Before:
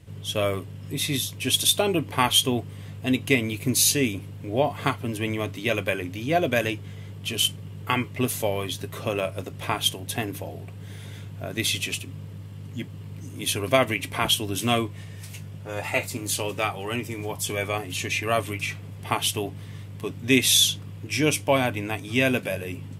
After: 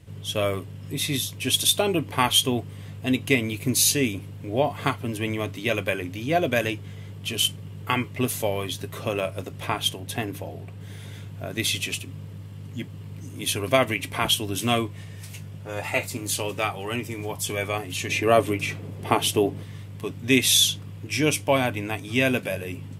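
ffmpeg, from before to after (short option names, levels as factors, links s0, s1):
-filter_complex "[0:a]asettb=1/sr,asplit=3[s0][s1][s2];[s0]atrim=end=9.664[s3];[s1]atrim=start=9.66:end=10.81,asetpts=PTS-STARTPTS,afade=t=in:d=0.004:c=qsin,afade=t=out:st=1.146:d=0.004:c=qsin,highshelf=f=4800:g=-4[s4];[s2]atrim=start=10.806[s5];[s3][s4]acrossfade=d=0.004:c1=hsin:c2=qsin[s6];[s6][s5]acrossfade=d=0.004:c1=qsin:c2=hsin,asettb=1/sr,asplit=3[s7][s8][s9];[s7]atrim=end=18.094[s10];[s8]atrim=start=18.09:end=19.63,asetpts=PTS-STARTPTS,afade=t=in:d=0.004:c=qsin,afade=t=out:st=1.536:d=0.004:c=qsin,equalizer=f=380:w=0.64:g=9.5[s11];[s9]atrim=start=19.626[s12];[s10][s11]acrossfade=d=0.004:c1=hsin:c2=qsin[s13];[s13][s12]acrossfade=d=0.004:c1=qsin:c2=hsin"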